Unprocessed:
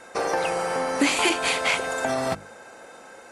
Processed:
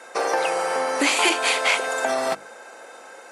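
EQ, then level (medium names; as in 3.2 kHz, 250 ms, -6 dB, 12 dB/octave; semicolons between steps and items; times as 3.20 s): high-pass 370 Hz 12 dB/octave; +3.0 dB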